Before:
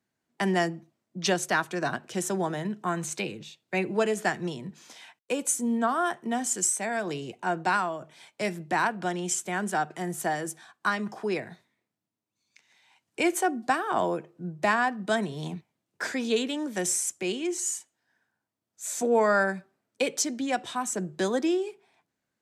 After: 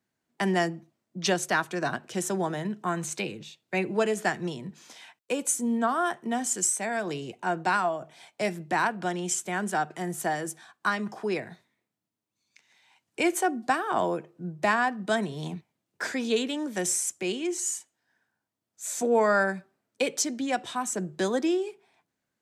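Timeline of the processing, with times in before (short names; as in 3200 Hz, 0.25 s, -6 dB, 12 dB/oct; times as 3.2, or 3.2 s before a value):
7.84–8.5 bell 720 Hz +8.5 dB 0.29 oct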